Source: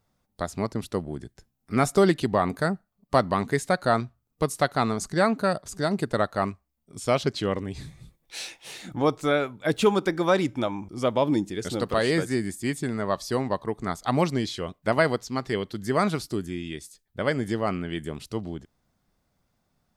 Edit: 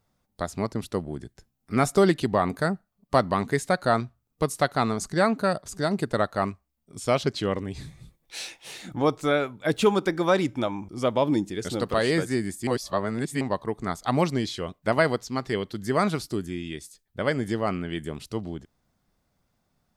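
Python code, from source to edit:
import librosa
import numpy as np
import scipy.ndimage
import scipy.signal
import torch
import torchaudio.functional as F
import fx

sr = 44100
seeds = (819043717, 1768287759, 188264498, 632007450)

y = fx.edit(x, sr, fx.reverse_span(start_s=12.67, length_s=0.74), tone=tone)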